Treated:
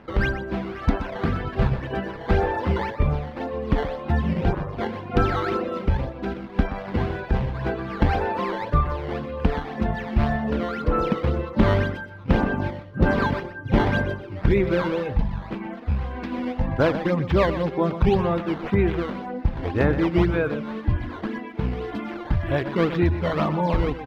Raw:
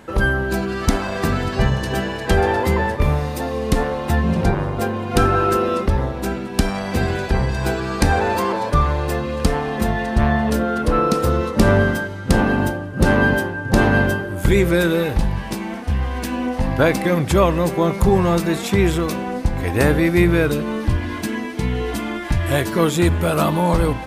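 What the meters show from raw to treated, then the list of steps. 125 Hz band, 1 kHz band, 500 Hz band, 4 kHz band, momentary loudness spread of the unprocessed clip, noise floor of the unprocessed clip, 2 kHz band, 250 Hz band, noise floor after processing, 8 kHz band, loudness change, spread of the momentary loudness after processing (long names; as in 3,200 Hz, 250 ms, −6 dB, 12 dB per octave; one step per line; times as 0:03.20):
−4.5 dB, −5.5 dB, −5.0 dB, −9.0 dB, 7 LU, −29 dBFS, −7.5 dB, −5.0 dB, −37 dBFS, below −20 dB, −5.5 dB, 9 LU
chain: reverb reduction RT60 0.94 s
sample-and-hold swept by an LFO 10×, swing 160% 1.9 Hz
high-frequency loss of the air 340 metres
single-tap delay 124 ms −11.5 dB
level −2.5 dB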